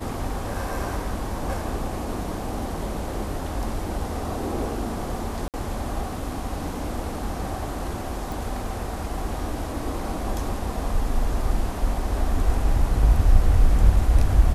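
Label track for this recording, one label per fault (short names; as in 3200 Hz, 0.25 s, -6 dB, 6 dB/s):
5.480000	5.540000	gap 58 ms
8.320000	8.320000	pop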